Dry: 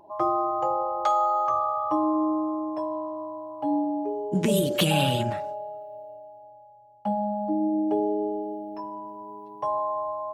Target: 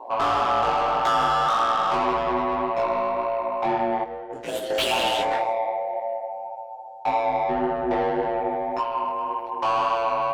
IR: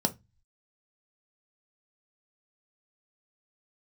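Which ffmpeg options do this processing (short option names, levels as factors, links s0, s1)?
-filter_complex "[0:a]highpass=360,aeval=exprs='val(0)*sin(2*PI*59*n/s)':c=same,asplit=2[s0][s1];[s1]acompressor=threshold=0.0158:ratio=6,volume=0.841[s2];[s0][s2]amix=inputs=2:normalize=0,asplit=2[s3][s4];[s4]highpass=f=720:p=1,volume=15.8,asoftclip=type=tanh:threshold=0.282[s5];[s3][s5]amix=inputs=2:normalize=0,lowpass=f=3300:p=1,volume=0.501,asoftclip=type=hard:threshold=0.2,flanger=delay=17.5:depth=3.5:speed=1.8,asplit=3[s6][s7][s8];[s6]afade=t=out:st=4.03:d=0.02[s9];[s7]agate=range=0.0224:threshold=0.158:ratio=3:detection=peak,afade=t=in:st=4.03:d=0.02,afade=t=out:st=4.69:d=0.02[s10];[s8]afade=t=in:st=4.69:d=0.02[s11];[s9][s10][s11]amix=inputs=3:normalize=0"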